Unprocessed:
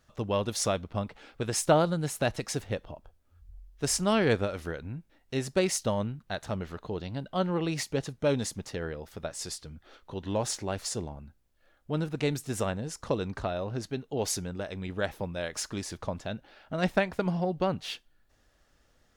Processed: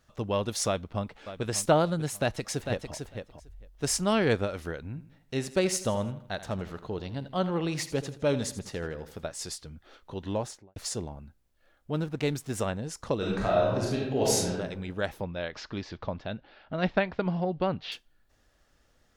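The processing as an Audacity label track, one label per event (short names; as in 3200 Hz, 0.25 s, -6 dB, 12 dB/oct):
0.670000	1.430000	echo throw 0.59 s, feedback 30%, level -12.5 dB
2.190000	2.940000	echo throw 0.45 s, feedback 10%, level -6.5 dB
4.870000	9.280000	feedback echo 81 ms, feedback 44%, level -14 dB
10.270000	10.760000	studio fade out
11.950000	12.580000	backlash play -46 dBFS
13.170000	14.520000	reverb throw, RT60 0.99 s, DRR -5 dB
15.210000	17.920000	inverse Chebyshev low-pass stop band from 10000 Hz, stop band 50 dB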